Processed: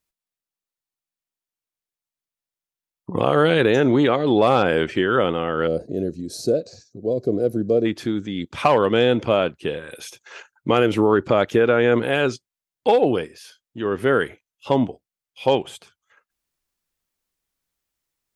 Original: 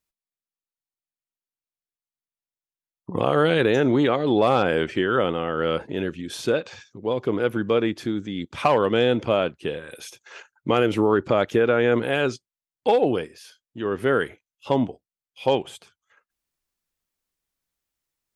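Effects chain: time-frequency box 5.67–7.85 s, 750–3800 Hz -21 dB; trim +2.5 dB

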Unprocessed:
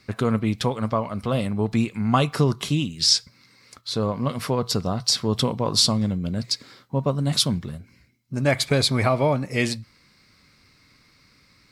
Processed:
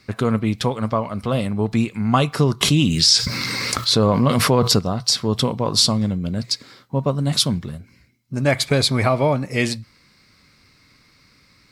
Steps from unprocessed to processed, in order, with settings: 2.61–4.79 s: level flattener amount 70%; trim +2.5 dB

